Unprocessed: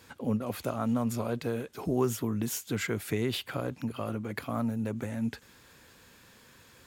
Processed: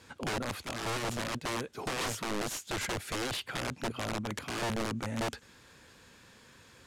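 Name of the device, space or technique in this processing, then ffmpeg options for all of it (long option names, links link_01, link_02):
overflowing digital effects unit: -filter_complex "[0:a]aeval=exprs='(mod(23.7*val(0)+1,2)-1)/23.7':channel_layout=same,lowpass=9400,asplit=3[link_01][link_02][link_03];[link_01]afade=type=out:start_time=0.63:duration=0.02[link_04];[link_02]agate=range=-33dB:threshold=-32dB:ratio=3:detection=peak,afade=type=in:start_time=0.63:duration=0.02,afade=type=out:start_time=1.42:duration=0.02[link_05];[link_03]afade=type=in:start_time=1.42:duration=0.02[link_06];[link_04][link_05][link_06]amix=inputs=3:normalize=0"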